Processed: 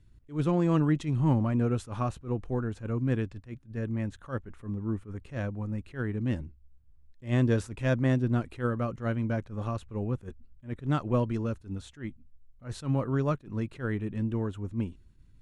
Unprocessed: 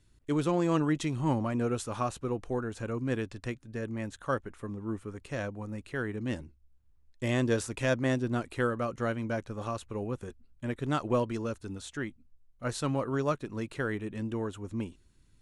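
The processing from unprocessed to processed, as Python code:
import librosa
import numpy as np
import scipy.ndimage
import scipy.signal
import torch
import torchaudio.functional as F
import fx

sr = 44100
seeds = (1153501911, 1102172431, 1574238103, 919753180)

y = fx.bass_treble(x, sr, bass_db=9, treble_db=-7)
y = fx.attack_slew(y, sr, db_per_s=220.0)
y = y * librosa.db_to_amplitude(-1.5)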